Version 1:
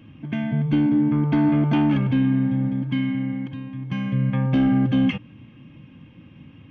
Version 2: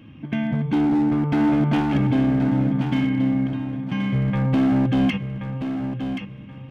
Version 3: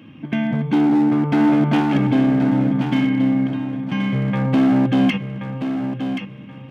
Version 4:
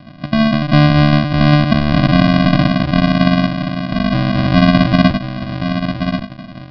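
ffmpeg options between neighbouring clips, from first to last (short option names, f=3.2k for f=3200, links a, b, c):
-af "bandreject=f=50:t=h:w=6,bandreject=f=100:t=h:w=6,bandreject=f=150:t=h:w=6,volume=18.5dB,asoftclip=hard,volume=-18.5dB,aecho=1:1:1078|2156|3234:0.398|0.115|0.0335,volume=2dB"
-af "highpass=150,volume=4dB"
-af "aresample=16000,acrusher=samples=36:mix=1:aa=0.000001,aresample=44100,aresample=11025,aresample=44100,volume=5dB"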